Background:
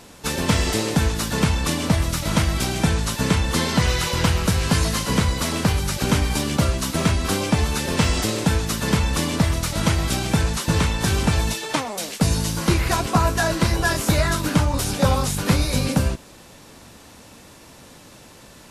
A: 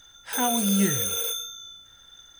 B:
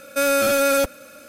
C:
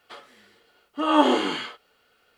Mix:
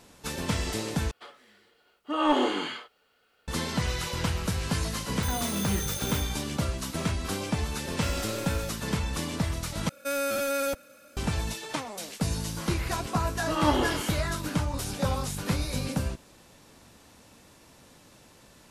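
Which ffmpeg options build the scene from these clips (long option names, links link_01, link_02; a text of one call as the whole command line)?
ffmpeg -i bed.wav -i cue0.wav -i cue1.wav -i cue2.wav -filter_complex "[3:a]asplit=2[link_01][link_02];[2:a]asplit=2[link_03][link_04];[0:a]volume=-9.5dB[link_05];[link_01]acontrast=53[link_06];[1:a]agate=range=-33dB:threshold=-40dB:ratio=3:release=100:detection=peak[link_07];[link_03]aeval=exprs='(tanh(6.31*val(0)+0.4)-tanh(0.4))/6.31':channel_layout=same[link_08];[link_02]agate=range=-33dB:threshold=-50dB:ratio=3:release=100:detection=peak[link_09];[link_05]asplit=3[link_10][link_11][link_12];[link_10]atrim=end=1.114[link_13];[link_06]atrim=end=2.37,asetpts=PTS-STARTPTS,volume=-10dB[link_14];[link_11]atrim=start=3.476:end=9.894[link_15];[link_04]atrim=end=1.28,asetpts=PTS-STARTPTS,volume=-10dB[link_16];[link_12]atrim=start=11.166[link_17];[link_07]atrim=end=2.39,asetpts=PTS-STARTPTS,volume=-8.5dB,afade=type=in:duration=0.004:curve=hsin,afade=type=out:start_time=2.386:duration=0.004:curve=hsin,adelay=4900[link_18];[link_08]atrim=end=1.28,asetpts=PTS-STARTPTS,volume=-16.5dB,afade=type=in:duration=0.004:curve=hsin,afade=type=out:start_time=1.276:duration=0.004:curve=hsin,adelay=7850[link_19];[link_09]atrim=end=2.37,asetpts=PTS-STARTPTS,volume=-6.5dB,afade=type=in:duration=0.004:curve=hsin,afade=type=out:start_time=2.366:duration=0.004:curve=hsin,adelay=12490[link_20];[link_13][link_14]acrossfade=duration=0.004:curve1=hsin:curve2=hsin[link_21];[link_21][link_15]acrossfade=duration=0.004:curve1=hsin:curve2=hsin[link_22];[link_22][link_16]acrossfade=duration=0.004:curve1=hsin:curve2=hsin[link_23];[link_23][link_17]acrossfade=duration=0.004:curve1=hsin:curve2=hsin[link_24];[link_24][link_18][link_19][link_20]amix=inputs=4:normalize=0" out.wav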